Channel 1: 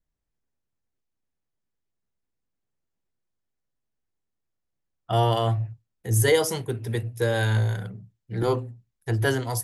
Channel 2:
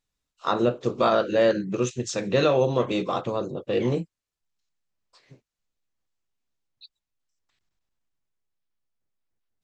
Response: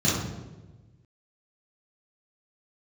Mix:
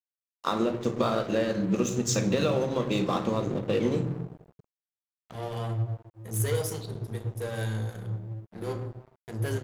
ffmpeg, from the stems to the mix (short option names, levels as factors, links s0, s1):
-filter_complex "[0:a]equalizer=f=520:w=2:g=4.5,asoftclip=type=tanh:threshold=0.168,adelay=200,volume=0.316,asplit=2[s0][s1];[s1]volume=0.0944[s2];[1:a]acompressor=threshold=0.0631:ratio=8,volume=1.12,asplit=3[s3][s4][s5];[s4]volume=0.075[s6];[s5]apad=whole_len=433781[s7];[s0][s7]sidechaincompress=threshold=0.00251:ratio=3:attack=11:release=556[s8];[2:a]atrim=start_sample=2205[s9];[s2][s6]amix=inputs=2:normalize=0[s10];[s10][s9]afir=irnorm=-1:irlink=0[s11];[s8][s3][s11]amix=inputs=3:normalize=0,highshelf=f=6900:g=10.5,aeval=exprs='sgn(val(0))*max(abs(val(0))-0.01,0)':c=same"